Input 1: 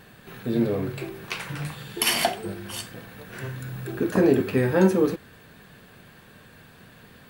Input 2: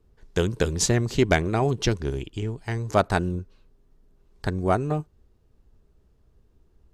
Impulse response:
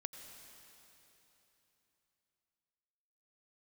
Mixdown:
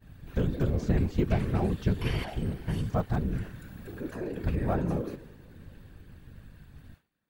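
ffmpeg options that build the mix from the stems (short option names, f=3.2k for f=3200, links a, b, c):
-filter_complex "[0:a]acrossover=split=3400[a][b];[b]acompressor=threshold=-42dB:ratio=4:attack=1:release=60[c];[a][c]amix=inputs=2:normalize=0,alimiter=limit=-18dB:level=0:latency=1:release=34,volume=-7.5dB,asplit=2[d][e];[e]volume=-3.5dB[f];[1:a]aemphasis=mode=reproduction:type=bsi,deesser=0.9,aeval=exprs='val(0)+0.0141*(sin(2*PI*50*n/s)+sin(2*PI*2*50*n/s)/2+sin(2*PI*3*50*n/s)/3+sin(2*PI*4*50*n/s)/4+sin(2*PI*5*50*n/s)/5)':c=same,volume=-4.5dB[g];[2:a]atrim=start_sample=2205[h];[f][h]afir=irnorm=-1:irlink=0[i];[d][g][i]amix=inputs=3:normalize=0,agate=range=-33dB:threshold=-39dB:ratio=3:detection=peak,afftfilt=real='hypot(re,im)*cos(2*PI*random(0))':imag='hypot(re,im)*sin(2*PI*random(1))':win_size=512:overlap=0.75"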